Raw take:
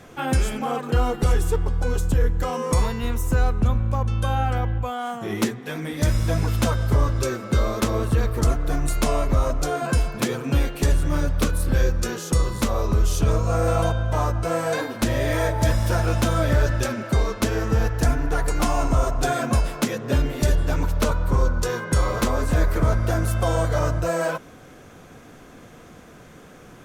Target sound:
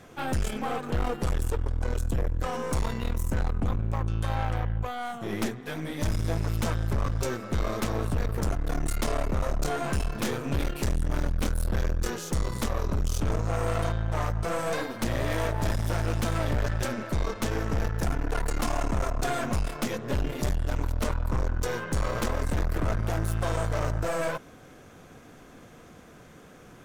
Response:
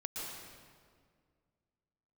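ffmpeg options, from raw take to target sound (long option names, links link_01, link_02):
-filter_complex "[0:a]asettb=1/sr,asplit=3[link_01][link_02][link_03];[link_01]atrim=end=9.464[link_04];[link_02]atrim=start=9.46:end=12.1,asetpts=PTS-STARTPTS,afade=type=in:duration=0.004:curve=qsin,afade=type=out:start_time=2.636:duration=0.004:curve=qsin,asplit=2[link_05][link_06];[link_06]adelay=28,volume=-5.5dB[link_07];[link_05][link_07]amix=inputs=2:normalize=0,atrim=end_sample=116424[link_08];[link_03]atrim=start=12.096[link_09];[link_04][link_08]acrossfade=duration=0.004:curve1=hsin:curve2=qsin[link_10];[link_10][link_09]acrossfade=duration=0.004:curve1=qsin:curve2=hsin,aeval=exprs='(tanh(15.8*val(0)+0.75)-tanh(0.75))/15.8':channel_layout=same"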